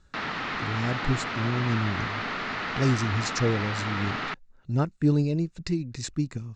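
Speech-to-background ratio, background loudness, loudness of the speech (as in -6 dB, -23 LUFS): 2.5 dB, -31.0 LUFS, -28.5 LUFS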